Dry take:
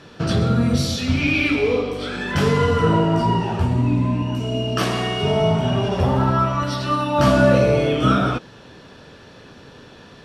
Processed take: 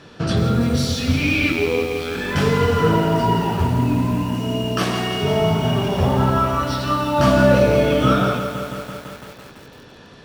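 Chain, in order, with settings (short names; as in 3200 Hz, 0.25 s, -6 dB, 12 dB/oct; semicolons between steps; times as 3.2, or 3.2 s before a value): 1.52–2.15 robotiser 82.1 Hz; lo-fi delay 0.168 s, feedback 80%, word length 6-bit, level -9.5 dB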